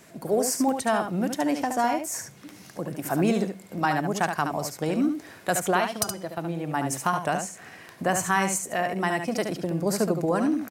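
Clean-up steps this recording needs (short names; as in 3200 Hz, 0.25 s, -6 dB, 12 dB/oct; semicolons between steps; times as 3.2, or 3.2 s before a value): de-click; inverse comb 72 ms -6.5 dB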